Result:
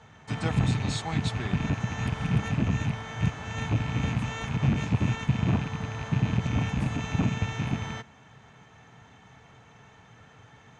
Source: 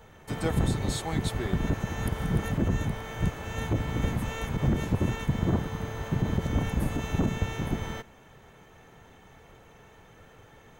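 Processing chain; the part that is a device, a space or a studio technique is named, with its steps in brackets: car door speaker with a rattle (rattling part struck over -31 dBFS, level -31 dBFS; speaker cabinet 87–7200 Hz, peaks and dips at 120 Hz +5 dB, 360 Hz -9 dB, 530 Hz -8 dB); gain +1.5 dB

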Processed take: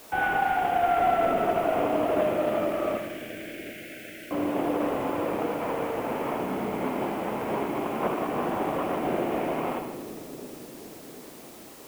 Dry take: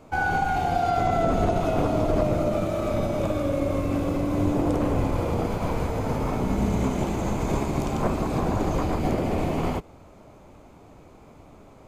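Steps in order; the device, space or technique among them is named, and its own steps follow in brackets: army field radio (BPF 310–3000 Hz; CVSD 16 kbps; white noise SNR 22 dB); 2.97–4.31 steep high-pass 1500 Hz 96 dB/oct; split-band echo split 460 Hz, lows 0.748 s, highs 82 ms, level -8.5 dB; spring tank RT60 2 s, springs 37/57 ms, chirp 50 ms, DRR 12 dB; dynamic EQ 6400 Hz, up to -4 dB, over -50 dBFS, Q 0.77

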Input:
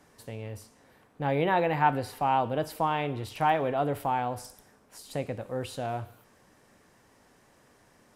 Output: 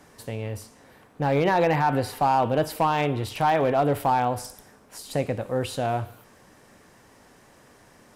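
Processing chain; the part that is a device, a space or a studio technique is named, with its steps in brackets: limiter into clipper (limiter -18 dBFS, peak gain reduction 7.5 dB; hard clip -21 dBFS, distortion -22 dB); gain +7 dB

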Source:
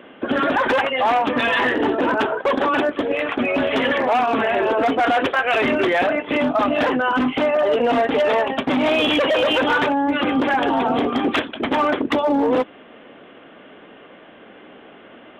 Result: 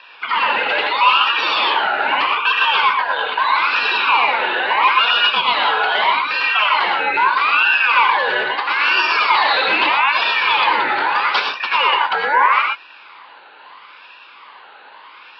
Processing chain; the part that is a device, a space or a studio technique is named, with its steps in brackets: 9.34–11.52 bell 2600 Hz +4 dB 1.9 oct; voice changer toy (ring modulator with a swept carrier 1600 Hz, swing 35%, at 0.78 Hz; speaker cabinet 540–4300 Hz, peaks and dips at 680 Hz -6 dB, 1000 Hz +10 dB, 1900 Hz -5 dB, 2800 Hz +3 dB); non-linear reverb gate 0.14 s rising, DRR 1.5 dB; gain +2.5 dB

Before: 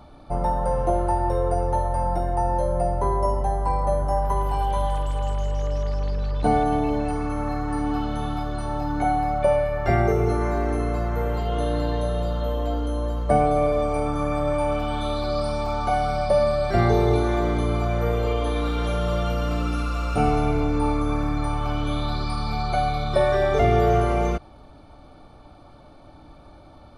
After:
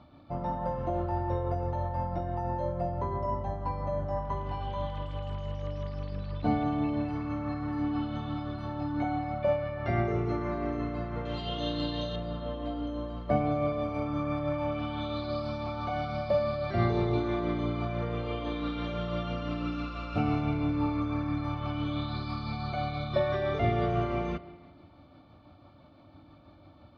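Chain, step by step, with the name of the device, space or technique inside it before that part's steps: combo amplifier with spring reverb and tremolo (spring tank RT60 1.4 s, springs 37/41/46 ms, chirp 50 ms, DRR 12.5 dB; tremolo 6 Hz, depth 30%; speaker cabinet 90–4300 Hz, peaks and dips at 92 Hz +7 dB, 280 Hz +3 dB, 430 Hz -8 dB, 810 Hz -7 dB, 1500 Hz -4 dB); 11.25–12.16 band shelf 4700 Hz +12 dB; gain -4.5 dB

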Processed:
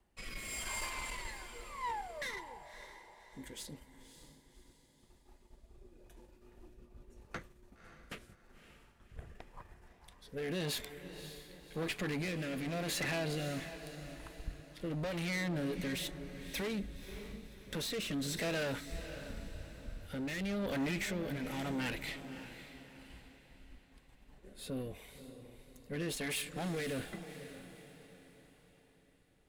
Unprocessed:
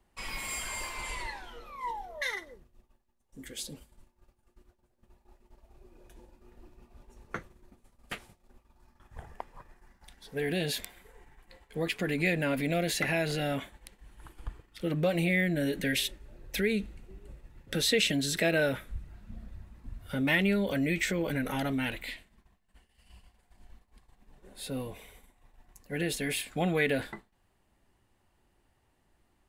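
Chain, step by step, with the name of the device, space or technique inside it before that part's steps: overdriven rotary cabinet (tube stage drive 34 dB, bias 0.5; rotary speaker horn 0.9 Hz); diffused feedback echo 0.562 s, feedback 43%, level -11 dB; gain +1.5 dB

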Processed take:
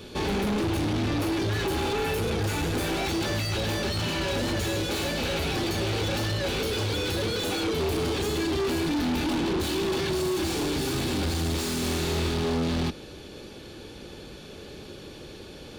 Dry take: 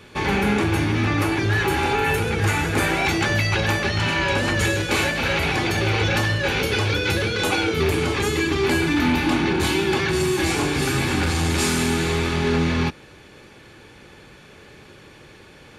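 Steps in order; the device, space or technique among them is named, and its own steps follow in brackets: graphic EQ 125/1000/2000/4000/8000 Hz -6/-7/-12/+3/-5 dB; saturation between pre-emphasis and de-emphasis (high shelf 3700 Hz +10.5 dB; soft clip -31 dBFS, distortion -6 dB; high shelf 3700 Hz -10.5 dB); 11.79–12.29 flutter echo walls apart 6 m, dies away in 0.42 s; gain +7 dB

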